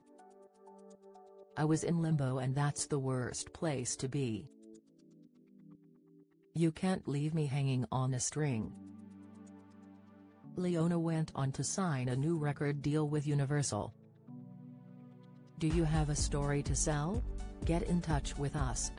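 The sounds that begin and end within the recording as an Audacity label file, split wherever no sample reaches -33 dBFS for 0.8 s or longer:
1.570000	4.360000	sound
6.560000	8.650000	sound
10.580000	13.860000	sound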